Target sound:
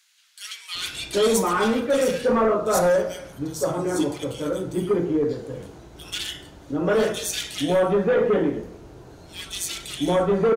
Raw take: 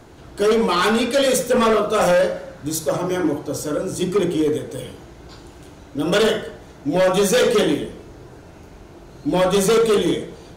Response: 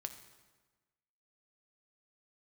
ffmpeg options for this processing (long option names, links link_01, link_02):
-filter_complex "[0:a]acrossover=split=2100[link_01][link_02];[link_01]adelay=750[link_03];[link_03][link_02]amix=inputs=2:normalize=0,volume=-3dB"